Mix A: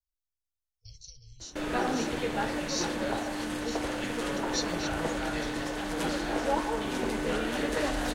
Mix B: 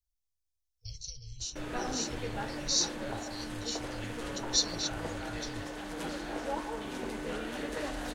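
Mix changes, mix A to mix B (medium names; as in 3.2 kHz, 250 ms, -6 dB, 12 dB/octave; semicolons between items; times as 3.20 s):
speech +6.0 dB; background -7.0 dB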